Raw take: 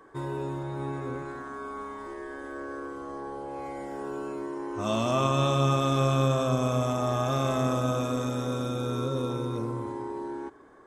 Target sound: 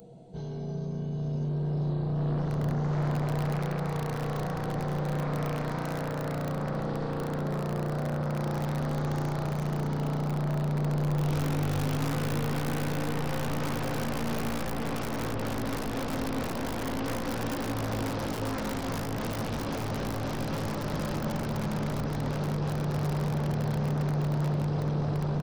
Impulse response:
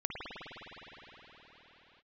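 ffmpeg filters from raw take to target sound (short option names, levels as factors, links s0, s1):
-filter_complex "[0:a]equalizer=f=125:t=o:w=1:g=-9,equalizer=f=1000:t=o:w=1:g=-3,equalizer=f=4000:t=o:w=1:g=-10,equalizer=f=8000:t=o:w=1:g=-6,aecho=1:1:897|1794|2691|3588:0.501|0.185|0.0686|0.0254,asetrate=18846,aresample=44100,acompressor=threshold=0.0141:ratio=8,bandreject=f=1200:w=11,dynaudnorm=f=570:g=7:m=3.16,aeval=exprs='0.0631*(abs(mod(val(0)/0.0631+3,4)-2)-1)':c=same,aeval=exprs='0.0668*(cos(1*acos(clip(val(0)/0.0668,-1,1)))-cos(1*PI/2))+0.0335*(cos(5*acos(clip(val(0)/0.0668,-1,1)))-cos(5*PI/2))':c=same,aemphasis=mode=production:type=75kf,bandreject=f=60:t=h:w=6,bandreject=f=120:t=h:w=6,asplit=2[s0][s1];[1:a]atrim=start_sample=2205,asetrate=27783,aresample=44100,highshelf=f=10000:g=10[s2];[s1][s2]afir=irnorm=-1:irlink=0,volume=0.335[s3];[s0][s3]amix=inputs=2:normalize=0,volume=0.398"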